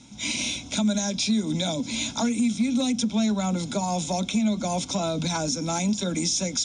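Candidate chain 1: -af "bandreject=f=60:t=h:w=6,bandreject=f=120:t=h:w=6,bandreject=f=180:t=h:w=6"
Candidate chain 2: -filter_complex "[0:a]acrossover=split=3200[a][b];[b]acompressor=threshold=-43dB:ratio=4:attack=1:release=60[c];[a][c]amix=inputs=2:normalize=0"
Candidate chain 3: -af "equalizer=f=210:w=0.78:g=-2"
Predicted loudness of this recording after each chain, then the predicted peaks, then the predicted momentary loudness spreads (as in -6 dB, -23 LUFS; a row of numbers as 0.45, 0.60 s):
-25.5, -26.5, -26.5 LUFS; -14.0, -15.0, -15.0 dBFS; 3, 6, 3 LU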